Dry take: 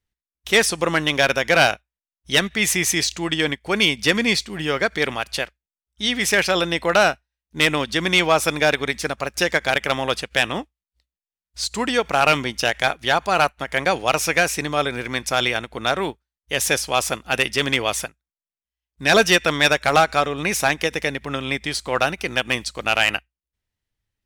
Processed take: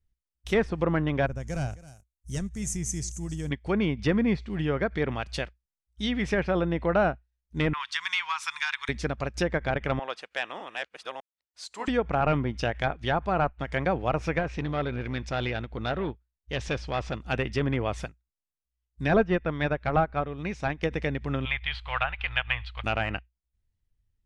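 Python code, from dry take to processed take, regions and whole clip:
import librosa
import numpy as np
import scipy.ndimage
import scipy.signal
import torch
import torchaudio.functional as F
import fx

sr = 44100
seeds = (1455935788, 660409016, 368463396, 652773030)

y = fx.chain(x, sr, fx.block_float(bits=5),
    fx.curve_eq(hz=(110.0, 310.0, 4000.0, 6600.0), db=(0, -11, -21, 5)),
    fx.echo_single(ms=266, db=-19.0), at=(1.26, 3.51))
y = fx.chain(y, sr, fx.ellip_highpass(hz=960.0, order=4, stop_db=40),
    fx.band_squash(depth_pct=70), at=(7.73, 8.89))
y = fx.chain(y, sr, fx.reverse_delay(ms=607, wet_db=-3),
    fx.highpass(hz=730.0, slope=12),
    fx.high_shelf(hz=3200.0, db=-11.0), at=(9.99, 11.88))
y = fx.chain(y, sr, fx.lowpass(hz=4200.0, slope=12),
    fx.transformer_sat(knee_hz=1500.0), at=(14.39, 17.21))
y = fx.chain(y, sr, fx.air_absorb(metres=98.0),
    fx.upward_expand(threshold_db=-29.0, expansion=1.5), at=(19.14, 20.83))
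y = fx.chain(y, sr, fx.block_float(bits=5),
    fx.curve_eq(hz=(100.0, 170.0, 320.0, 500.0, 810.0, 1900.0, 3200.0, 5900.0, 9200.0, 13000.0), db=(0, -23, -30, -15, 0, 5, 8, -22, -28, -12)), at=(21.45, 22.84))
y = fx.riaa(y, sr, side='playback')
y = fx.env_lowpass_down(y, sr, base_hz=1500.0, full_db=-14.0)
y = fx.peak_eq(y, sr, hz=9500.0, db=13.5, octaves=1.8)
y = F.gain(torch.from_numpy(y), -8.0).numpy()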